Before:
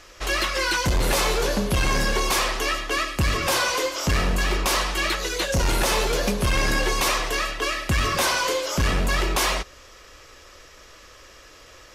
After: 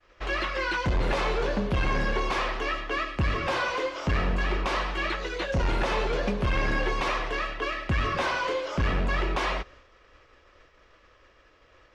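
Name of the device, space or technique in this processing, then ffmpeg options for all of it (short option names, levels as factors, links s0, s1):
hearing-loss simulation: -af "lowpass=2700,agate=range=0.0224:threshold=0.00708:ratio=3:detection=peak,volume=0.668"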